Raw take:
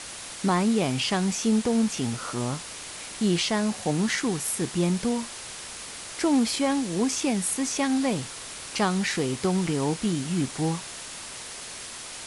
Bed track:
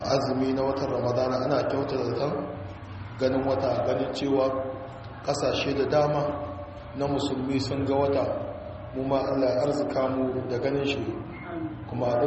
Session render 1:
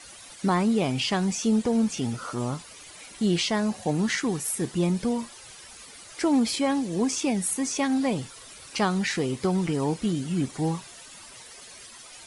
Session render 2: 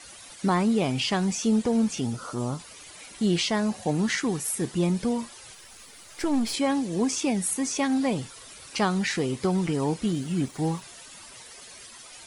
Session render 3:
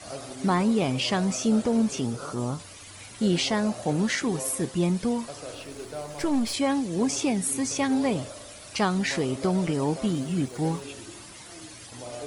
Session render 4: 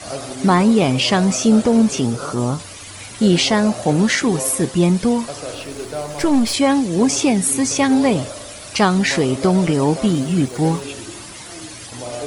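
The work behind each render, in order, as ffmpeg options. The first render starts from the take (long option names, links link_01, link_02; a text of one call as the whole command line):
ffmpeg -i in.wav -af "afftdn=noise_reduction=12:noise_floor=-39" out.wav
ffmpeg -i in.wav -filter_complex "[0:a]asettb=1/sr,asplit=3[link_01][link_02][link_03];[link_01]atrim=end=2.014[link_04];[link_02]atrim=start=2.01:end=2.6,asetpts=PTS-STARTPTS,afade=type=in:duration=0.004:curve=qsin,afade=type=out:start_time=0.586:duration=0.004:curve=qsin,equalizer=frequency=2100:width_type=o:width=1.3:gain=-6[link_05];[link_03]atrim=start=2.596[link_06];[link_04][link_05]acrossfade=duration=0.004:curve1=hsin:curve2=qsin[link_07];[link_07][link_06]acrossfade=duration=0.004:curve1=qsin:curve2=hsin,asplit=3[link_08][link_09][link_10];[link_08]afade=type=out:start_time=5.53:duration=0.02[link_11];[link_09]aeval=exprs='if(lt(val(0),0),0.447*val(0),val(0))':channel_layout=same,afade=type=in:start_time=5.53:duration=0.02,afade=type=out:start_time=6.53:duration=0.02[link_12];[link_10]afade=type=in:start_time=6.53:duration=0.02[link_13];[link_11][link_12][link_13]amix=inputs=3:normalize=0,asettb=1/sr,asplit=3[link_14][link_15][link_16];[link_14]atrim=end=10.074[link_17];[link_15]atrim=start=10.07:end=10.82,asetpts=PTS-STARTPTS,afade=type=in:duration=0.004:curve=qsin,afade=type=out:start_time=0.746:duration=0.004:curve=qsin,aeval=exprs='sgn(val(0))*max(abs(val(0))-0.00211,0)':channel_layout=same[link_18];[link_16]atrim=start=10.816[link_19];[link_17][link_18]acrossfade=duration=0.004:curve1=hsin:curve2=qsin[link_20];[link_20][link_19]acrossfade=duration=0.004:curve1=qsin:curve2=hsin" out.wav
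ffmpeg -i in.wav -i bed.wav -filter_complex "[1:a]volume=-14dB[link_01];[0:a][link_01]amix=inputs=2:normalize=0" out.wav
ffmpeg -i in.wav -af "volume=9.5dB" out.wav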